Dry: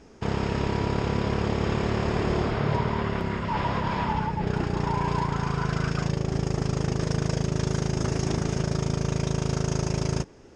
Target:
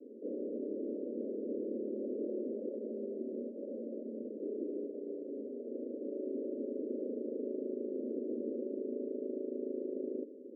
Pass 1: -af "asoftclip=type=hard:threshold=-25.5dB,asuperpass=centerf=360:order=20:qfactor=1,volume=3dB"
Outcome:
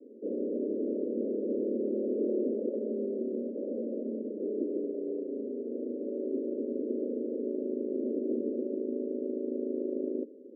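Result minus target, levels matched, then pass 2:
hard clipping: distortion −5 dB
-af "asoftclip=type=hard:threshold=-35dB,asuperpass=centerf=360:order=20:qfactor=1,volume=3dB"

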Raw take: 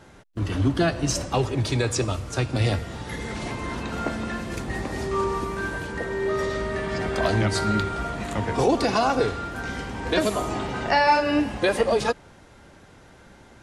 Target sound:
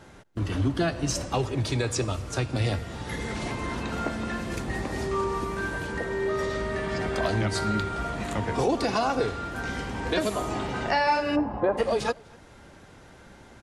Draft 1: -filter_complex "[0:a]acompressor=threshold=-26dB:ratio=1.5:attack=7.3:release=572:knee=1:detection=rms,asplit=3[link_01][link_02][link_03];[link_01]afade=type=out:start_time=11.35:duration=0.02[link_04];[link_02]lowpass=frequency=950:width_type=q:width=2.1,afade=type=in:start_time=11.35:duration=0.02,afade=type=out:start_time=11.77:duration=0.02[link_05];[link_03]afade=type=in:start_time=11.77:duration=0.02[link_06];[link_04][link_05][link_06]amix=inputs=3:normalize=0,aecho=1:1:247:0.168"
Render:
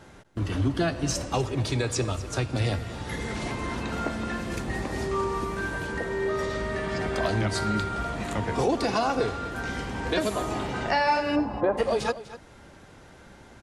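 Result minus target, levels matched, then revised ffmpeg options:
echo-to-direct +11.5 dB
-filter_complex "[0:a]acompressor=threshold=-26dB:ratio=1.5:attack=7.3:release=572:knee=1:detection=rms,asplit=3[link_01][link_02][link_03];[link_01]afade=type=out:start_time=11.35:duration=0.02[link_04];[link_02]lowpass=frequency=950:width_type=q:width=2.1,afade=type=in:start_time=11.35:duration=0.02,afade=type=out:start_time=11.77:duration=0.02[link_05];[link_03]afade=type=in:start_time=11.77:duration=0.02[link_06];[link_04][link_05][link_06]amix=inputs=3:normalize=0,aecho=1:1:247:0.0447"

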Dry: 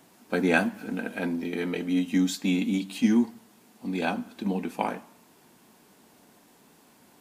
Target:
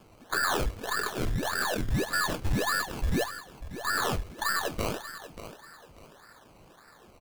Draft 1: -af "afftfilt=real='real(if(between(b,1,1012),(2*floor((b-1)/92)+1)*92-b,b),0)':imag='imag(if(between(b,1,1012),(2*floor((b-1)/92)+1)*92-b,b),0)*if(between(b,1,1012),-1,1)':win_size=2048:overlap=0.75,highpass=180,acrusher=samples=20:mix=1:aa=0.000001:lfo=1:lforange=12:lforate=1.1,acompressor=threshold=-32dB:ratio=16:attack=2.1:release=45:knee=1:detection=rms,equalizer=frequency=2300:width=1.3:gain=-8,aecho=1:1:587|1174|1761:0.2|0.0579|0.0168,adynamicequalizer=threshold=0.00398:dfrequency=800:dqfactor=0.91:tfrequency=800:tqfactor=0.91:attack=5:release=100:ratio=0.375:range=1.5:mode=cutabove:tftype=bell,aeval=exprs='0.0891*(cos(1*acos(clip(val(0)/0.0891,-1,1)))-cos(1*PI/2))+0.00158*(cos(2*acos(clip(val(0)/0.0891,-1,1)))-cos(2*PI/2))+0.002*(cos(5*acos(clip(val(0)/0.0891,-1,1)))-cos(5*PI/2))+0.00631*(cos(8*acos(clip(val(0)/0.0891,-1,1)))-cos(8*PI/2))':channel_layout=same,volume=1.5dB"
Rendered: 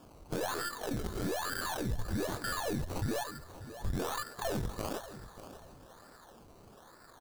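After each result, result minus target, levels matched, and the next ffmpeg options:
downward compressor: peak gain reduction +8.5 dB; 2,000 Hz band −4.5 dB; sample-and-hold swept by an LFO: distortion −6 dB
-af "afftfilt=real='real(if(between(b,1,1012),(2*floor((b-1)/92)+1)*92-b,b),0)':imag='imag(if(between(b,1,1012),(2*floor((b-1)/92)+1)*92-b,b),0)*if(between(b,1,1012),-1,1)':win_size=2048:overlap=0.75,highpass=180,acrusher=samples=20:mix=1:aa=0.000001:lfo=1:lforange=12:lforate=1.1,acompressor=threshold=-24dB:ratio=16:attack=2.1:release=45:knee=1:detection=rms,equalizer=frequency=2300:width=1.3:gain=-8,aecho=1:1:587|1174|1761:0.2|0.0579|0.0168,adynamicequalizer=threshold=0.00398:dfrequency=800:dqfactor=0.91:tfrequency=800:tqfactor=0.91:attack=5:release=100:ratio=0.375:range=1.5:mode=cutabove:tftype=bell,aeval=exprs='0.0891*(cos(1*acos(clip(val(0)/0.0891,-1,1)))-cos(1*PI/2))+0.00158*(cos(2*acos(clip(val(0)/0.0891,-1,1)))-cos(2*PI/2))+0.002*(cos(5*acos(clip(val(0)/0.0891,-1,1)))-cos(5*PI/2))+0.00631*(cos(8*acos(clip(val(0)/0.0891,-1,1)))-cos(8*PI/2))':channel_layout=same,volume=1.5dB"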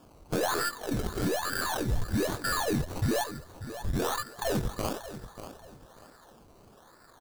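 2,000 Hz band −4.5 dB; sample-and-hold swept by an LFO: distortion −6 dB
-af "afftfilt=real='real(if(between(b,1,1012),(2*floor((b-1)/92)+1)*92-b,b),0)':imag='imag(if(between(b,1,1012),(2*floor((b-1)/92)+1)*92-b,b),0)*if(between(b,1,1012),-1,1)':win_size=2048:overlap=0.75,highpass=180,acrusher=samples=20:mix=1:aa=0.000001:lfo=1:lforange=12:lforate=1.1,acompressor=threshold=-24dB:ratio=16:attack=2.1:release=45:knee=1:detection=rms,aecho=1:1:587|1174|1761:0.2|0.0579|0.0168,adynamicequalizer=threshold=0.00398:dfrequency=800:dqfactor=0.91:tfrequency=800:tqfactor=0.91:attack=5:release=100:ratio=0.375:range=1.5:mode=cutabove:tftype=bell,aeval=exprs='0.0891*(cos(1*acos(clip(val(0)/0.0891,-1,1)))-cos(1*PI/2))+0.00158*(cos(2*acos(clip(val(0)/0.0891,-1,1)))-cos(2*PI/2))+0.002*(cos(5*acos(clip(val(0)/0.0891,-1,1)))-cos(5*PI/2))+0.00631*(cos(8*acos(clip(val(0)/0.0891,-1,1)))-cos(8*PI/2))':channel_layout=same,volume=1.5dB"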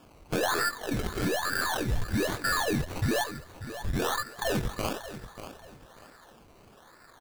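sample-and-hold swept by an LFO: distortion −6 dB
-af "afftfilt=real='real(if(between(b,1,1012),(2*floor((b-1)/92)+1)*92-b,b),0)':imag='imag(if(between(b,1,1012),(2*floor((b-1)/92)+1)*92-b,b),0)*if(between(b,1,1012),-1,1)':win_size=2048:overlap=0.75,highpass=180,acrusher=samples=20:mix=1:aa=0.000001:lfo=1:lforange=12:lforate=1.7,acompressor=threshold=-24dB:ratio=16:attack=2.1:release=45:knee=1:detection=rms,aecho=1:1:587|1174|1761:0.2|0.0579|0.0168,adynamicequalizer=threshold=0.00398:dfrequency=800:dqfactor=0.91:tfrequency=800:tqfactor=0.91:attack=5:release=100:ratio=0.375:range=1.5:mode=cutabove:tftype=bell,aeval=exprs='0.0891*(cos(1*acos(clip(val(0)/0.0891,-1,1)))-cos(1*PI/2))+0.00158*(cos(2*acos(clip(val(0)/0.0891,-1,1)))-cos(2*PI/2))+0.002*(cos(5*acos(clip(val(0)/0.0891,-1,1)))-cos(5*PI/2))+0.00631*(cos(8*acos(clip(val(0)/0.0891,-1,1)))-cos(8*PI/2))':channel_layout=same,volume=1.5dB"

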